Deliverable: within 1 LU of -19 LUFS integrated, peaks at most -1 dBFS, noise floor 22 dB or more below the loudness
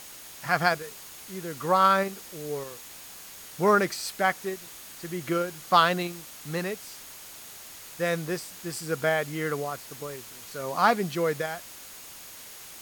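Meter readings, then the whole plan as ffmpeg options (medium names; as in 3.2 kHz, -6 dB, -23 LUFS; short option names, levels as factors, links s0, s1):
steady tone 6.6 kHz; tone level -55 dBFS; noise floor -45 dBFS; noise floor target -50 dBFS; loudness -27.5 LUFS; peak level -6.0 dBFS; loudness target -19.0 LUFS
-> -af "bandreject=f=6600:w=30"
-af "afftdn=nr=6:nf=-45"
-af "volume=2.66,alimiter=limit=0.891:level=0:latency=1"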